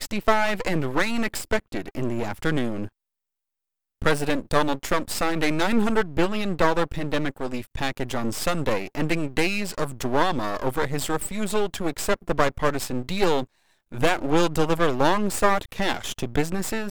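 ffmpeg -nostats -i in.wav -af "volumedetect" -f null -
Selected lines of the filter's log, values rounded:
mean_volume: -23.5 dB
max_volume: -4.1 dB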